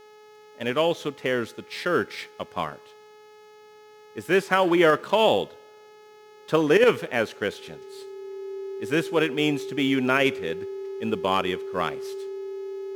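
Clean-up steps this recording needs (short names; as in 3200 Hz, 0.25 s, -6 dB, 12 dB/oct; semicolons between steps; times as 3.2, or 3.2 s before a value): de-hum 424.7 Hz, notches 16; notch 390 Hz, Q 30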